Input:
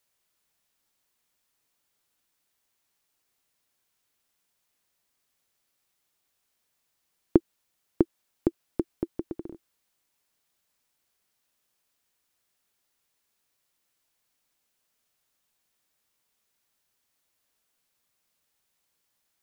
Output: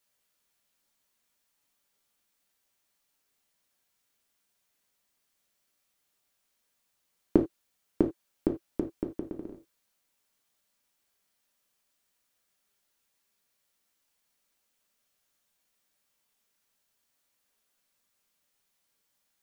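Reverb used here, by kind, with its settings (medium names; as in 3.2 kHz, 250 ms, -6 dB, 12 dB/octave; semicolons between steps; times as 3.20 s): gated-style reverb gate 110 ms falling, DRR 2 dB; trim -2.5 dB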